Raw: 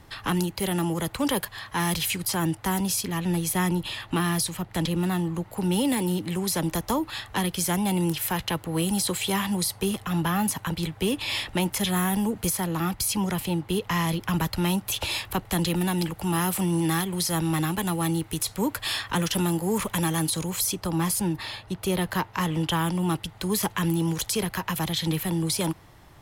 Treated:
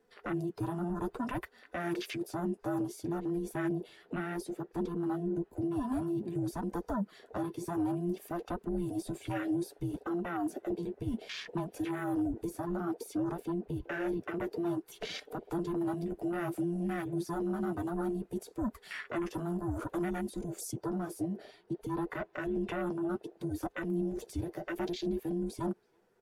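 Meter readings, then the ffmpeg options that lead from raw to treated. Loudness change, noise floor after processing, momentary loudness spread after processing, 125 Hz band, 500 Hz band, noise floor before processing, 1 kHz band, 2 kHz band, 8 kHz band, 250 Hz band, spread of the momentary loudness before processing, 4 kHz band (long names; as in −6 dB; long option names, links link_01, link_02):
−10.0 dB, −66 dBFS, 5 LU, −12.5 dB, −5.5 dB, −49 dBFS, −11.0 dB, −11.5 dB, −22.5 dB, −7.5 dB, 4 LU, −20.0 dB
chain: -filter_complex "[0:a]afftfilt=real='real(if(between(b,1,1008),(2*floor((b-1)/24)+1)*24-b,b),0)':imag='imag(if(between(b,1,1008),(2*floor((b-1)/24)+1)*24-b,b),0)*if(between(b,1,1008),-1,1)':win_size=2048:overlap=0.75,asplit=2[link_01][link_02];[link_02]adelay=330,highpass=300,lowpass=3400,asoftclip=type=hard:threshold=-21.5dB,volume=-24dB[link_03];[link_01][link_03]amix=inputs=2:normalize=0,afwtdn=0.0316,alimiter=limit=-23dB:level=0:latency=1:release=63,equalizer=frequency=3300:width_type=o:width=0.95:gain=-5,flanger=delay=3.8:depth=6.7:regen=-35:speed=0.59:shape=sinusoidal,highshelf=frequency=11000:gain=-6.5"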